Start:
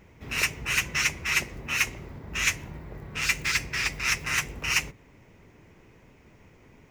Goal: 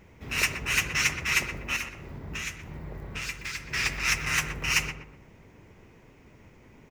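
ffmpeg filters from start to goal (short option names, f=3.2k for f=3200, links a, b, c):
-filter_complex "[0:a]asettb=1/sr,asplit=3[a][b][c];[a]atrim=end=1.764[d];[b]atrim=start=1.76:end=3.69,asetpts=PTS-STARTPTS,afade=t=in:d=0.004:c=qsin,afade=t=out:st=1.926:d=0.004:c=qsin,acompressor=threshold=-33dB:ratio=6[e];[c]atrim=start=3.686[f];[d][e]acrossfade=d=0.004:c1=hsin:c2=qsin[g];[g][f]acrossfade=d=0.004:c1=qsin:c2=hsin,asplit=2[h][i];[i]adelay=123,lowpass=f=1.3k:p=1,volume=-6dB,asplit=2[j][k];[k]adelay=123,lowpass=f=1.3k:p=1,volume=0.44,asplit=2[l][m];[m]adelay=123,lowpass=f=1.3k:p=1,volume=0.44,asplit=2[n][o];[o]adelay=123,lowpass=f=1.3k:p=1,volume=0.44,asplit=2[p][q];[q]adelay=123,lowpass=f=1.3k:p=1,volume=0.44[r];[j][l][n][p][r]amix=inputs=5:normalize=0[s];[h][s]amix=inputs=2:normalize=0"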